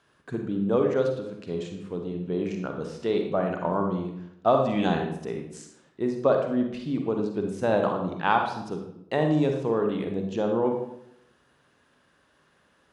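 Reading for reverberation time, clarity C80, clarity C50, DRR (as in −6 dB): 0.75 s, 7.5 dB, 4.5 dB, 3.0 dB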